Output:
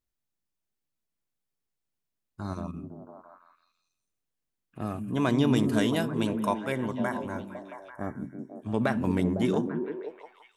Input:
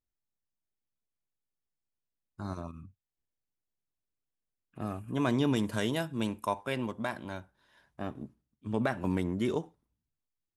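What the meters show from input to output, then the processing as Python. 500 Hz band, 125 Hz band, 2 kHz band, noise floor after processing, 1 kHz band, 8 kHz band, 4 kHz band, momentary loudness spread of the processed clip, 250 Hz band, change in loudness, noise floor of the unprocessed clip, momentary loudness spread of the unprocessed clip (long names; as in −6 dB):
+4.5 dB, +4.5 dB, +3.0 dB, −84 dBFS, +3.5 dB, +3.0 dB, +2.5 dB, 17 LU, +5.5 dB, +4.5 dB, below −85 dBFS, 16 LU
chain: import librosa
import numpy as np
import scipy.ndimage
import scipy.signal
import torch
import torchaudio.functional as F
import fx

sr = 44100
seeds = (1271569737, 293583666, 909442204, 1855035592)

y = fx.spec_box(x, sr, start_s=6.72, length_s=1.8, low_hz=2300.0, high_hz=5400.0, gain_db=-23)
y = fx.echo_stepped(y, sr, ms=168, hz=190.0, octaves=0.7, feedback_pct=70, wet_db=-1)
y = y * librosa.db_to_amplitude(3.0)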